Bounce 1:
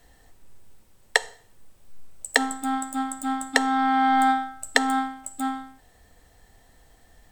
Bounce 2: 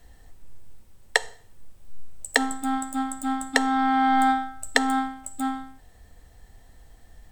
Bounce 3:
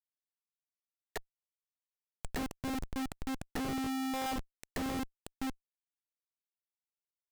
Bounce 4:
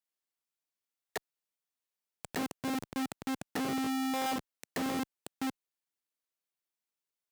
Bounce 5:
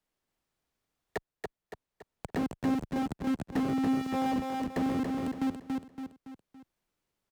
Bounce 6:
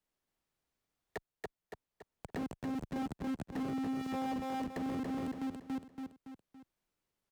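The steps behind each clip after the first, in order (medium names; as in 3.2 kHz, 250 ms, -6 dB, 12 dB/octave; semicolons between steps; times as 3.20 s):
bass shelf 140 Hz +9 dB; trim -1 dB
companded quantiser 6-bit; Schmitt trigger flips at -21.5 dBFS; trim -7.5 dB
high-pass 160 Hz 12 dB/octave; trim +3 dB
tilt EQ -3 dB/octave; on a send: feedback delay 282 ms, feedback 34%, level -4 dB; on the sum: three bands compressed up and down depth 40%; trim -1 dB
peak limiter -26.5 dBFS, peak gain reduction 7.5 dB; trim -3.5 dB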